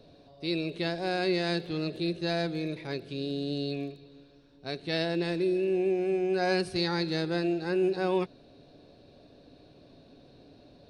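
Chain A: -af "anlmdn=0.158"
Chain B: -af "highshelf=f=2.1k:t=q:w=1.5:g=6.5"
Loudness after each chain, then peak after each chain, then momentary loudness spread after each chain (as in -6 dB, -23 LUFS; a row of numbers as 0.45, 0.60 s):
-30.0, -28.0 LUFS; -15.0, -12.0 dBFS; 10, 8 LU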